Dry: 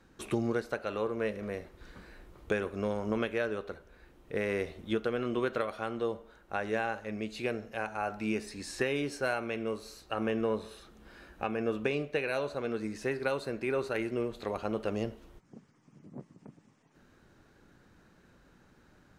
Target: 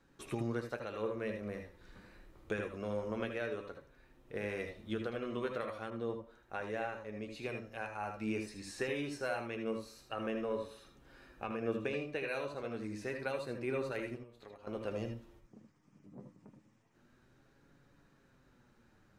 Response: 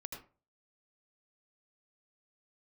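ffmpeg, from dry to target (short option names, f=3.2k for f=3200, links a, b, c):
-filter_complex "[0:a]asettb=1/sr,asplit=3[a][b][c];[a]atrim=end=14.154[d];[b]atrim=start=14.15:end=14.67,asetpts=PTS-STARTPTS,afade=t=in:d=0.004:c=qsin,afade=t=out:st=0.516:d=0.004:c=qsin,acompressor=threshold=-44dB:ratio=10[e];[c]atrim=start=14.666[f];[d][e]acrossfade=d=0.004:c1=hsin:c2=qsin[g];[g][f]acrossfade=d=0.004:c1=qsin:c2=hsin,flanger=delay=7.1:depth=2.9:regen=55:speed=0.28:shape=sinusoidal[h];[1:a]atrim=start_sample=2205,afade=t=out:st=0.13:d=0.01,atrim=end_sample=6174[i];[h][i]afir=irnorm=-1:irlink=0,asettb=1/sr,asplit=3[j][k][l];[j]atrim=end=5.904[m];[k]atrim=start=5.9:end=7.49,asetpts=PTS-STARTPTS,afade=t=in:d=0.004:c=qsin,afade=t=out:st=1.586:d=0.004:c=qsin,adynamicequalizer=threshold=0.002:dfrequency=1500:dqfactor=0.7:tfrequency=1500:tqfactor=0.7:attack=5:release=100:ratio=0.375:range=2.5:mode=cutabove:tftype=highshelf[n];[l]atrim=start=7.486[o];[m][n]acrossfade=d=0.004:c1=hsin:c2=qsin[p];[p][o]acrossfade=d=0.004:c1=qsin:c2=hsin,volume=2.5dB"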